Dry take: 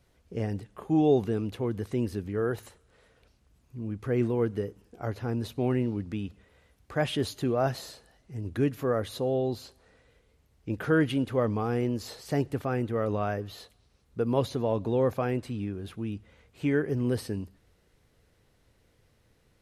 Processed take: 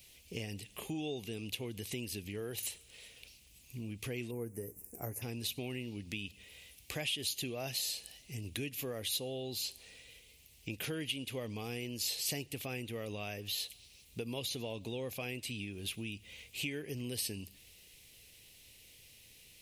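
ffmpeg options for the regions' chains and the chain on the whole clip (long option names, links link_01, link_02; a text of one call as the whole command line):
ffmpeg -i in.wav -filter_complex "[0:a]asettb=1/sr,asplit=3[link_01][link_02][link_03];[link_01]atrim=end=4.314[link_04];[link_02]atrim=start=4.31:end=5.22,asetpts=PTS-STARTPTS,afade=type=in:duration=0.004:curve=qsin,afade=type=out:start_time=0.906:duration=0.004:curve=qsin,asuperstop=centerf=3500:order=4:qfactor=0.56,highshelf=frequency=9400:gain=12,asplit=2[link_05][link_06];[link_06]adelay=17,volume=-13dB[link_07];[link_05][link_07]amix=inputs=2:normalize=0,atrim=end_sample=40131[link_08];[link_03]atrim=start=5.216[link_09];[link_04][link_08]acrossfade=duration=0.004:curve1=hsin:curve2=qsin[link_10];[link_10][link_09]acrossfade=duration=0.004:curve1=qsin:curve2=hsin,highshelf=frequency=1900:width_type=q:width=3:gain=10.5,acompressor=threshold=-37dB:ratio=4,aemphasis=mode=production:type=50kf,volume=-2.5dB" out.wav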